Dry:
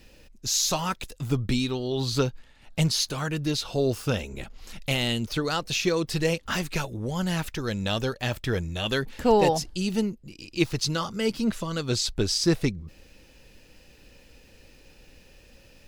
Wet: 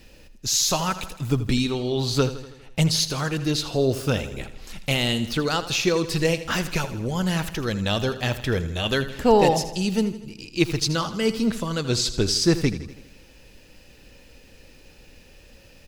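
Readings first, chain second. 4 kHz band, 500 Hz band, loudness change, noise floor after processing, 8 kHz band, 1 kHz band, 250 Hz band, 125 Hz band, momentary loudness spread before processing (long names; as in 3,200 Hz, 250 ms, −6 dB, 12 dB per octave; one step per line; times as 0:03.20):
+3.5 dB, +3.5 dB, +3.0 dB, −51 dBFS, +3.5 dB, +3.5 dB, +3.5 dB, +3.5 dB, 8 LU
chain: repeating echo 81 ms, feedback 57%, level −13.5 dB
level +3 dB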